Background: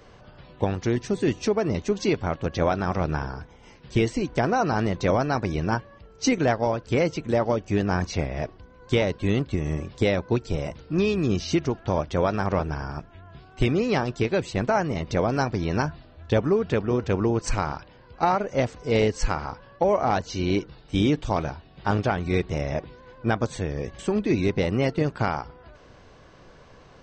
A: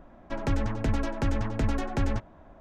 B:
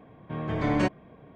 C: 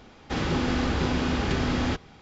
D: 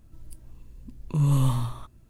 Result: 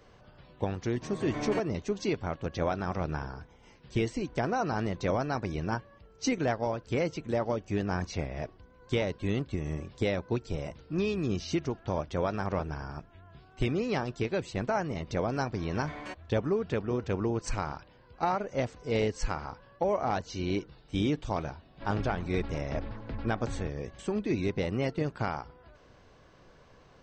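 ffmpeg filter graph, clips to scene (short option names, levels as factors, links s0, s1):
-filter_complex "[2:a]asplit=2[s0][s1];[0:a]volume=0.447[s2];[s0]equalizer=f=80:t=o:w=2.2:g=-5[s3];[s1]highpass=f=1100:p=1[s4];[1:a]aresample=11025,aresample=44100[s5];[s3]atrim=end=1.35,asetpts=PTS-STARTPTS,volume=0.398,afade=t=in:d=0.004:c=hsin,afade=t=out:st=1.346:d=0.004:c=hsin,adelay=720[s6];[s4]atrim=end=1.35,asetpts=PTS-STARTPTS,volume=0.355,afade=t=in:d=0.004:c=hsin,afade=t=out:st=1.346:d=0.004:c=hsin,adelay=15260[s7];[s5]atrim=end=2.6,asetpts=PTS-STARTPTS,volume=0.266,afade=t=in:d=0.004:c=hsin,afade=t=out:st=2.596:d=0.004:c=hsin,adelay=21500[s8];[s2][s6][s7][s8]amix=inputs=4:normalize=0"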